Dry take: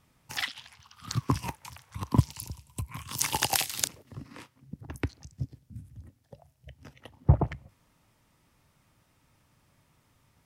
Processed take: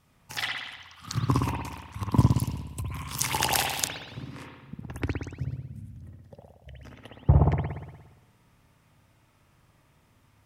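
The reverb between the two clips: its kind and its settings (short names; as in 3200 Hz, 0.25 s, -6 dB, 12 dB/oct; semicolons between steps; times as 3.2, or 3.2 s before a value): spring tank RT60 1.1 s, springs 58 ms, chirp 75 ms, DRR -1.5 dB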